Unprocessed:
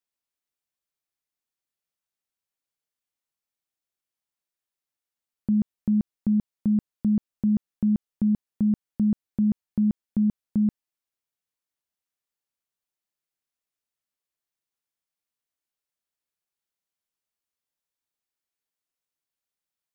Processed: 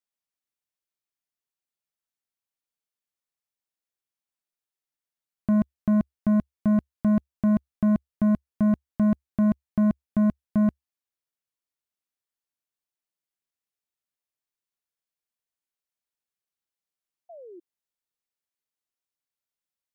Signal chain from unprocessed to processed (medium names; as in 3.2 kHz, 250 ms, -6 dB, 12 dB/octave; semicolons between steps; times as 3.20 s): peaking EQ 69 Hz -5 dB 0.2 oct; waveshaping leveller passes 2; painted sound fall, 17.29–17.60 s, 330–720 Hz -44 dBFS